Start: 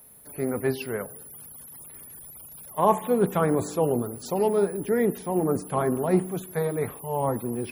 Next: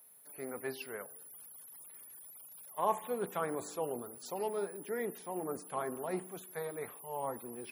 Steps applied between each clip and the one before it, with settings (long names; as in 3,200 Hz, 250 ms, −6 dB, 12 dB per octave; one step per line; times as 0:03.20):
high-pass filter 710 Hz 6 dB per octave
level −8 dB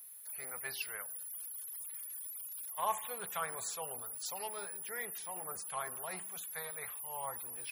guitar amp tone stack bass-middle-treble 10-0-10
level +8 dB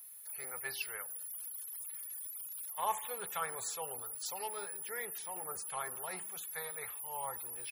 comb filter 2.3 ms, depth 30%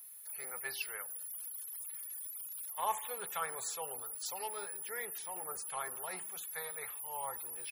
low-shelf EQ 100 Hz −11.5 dB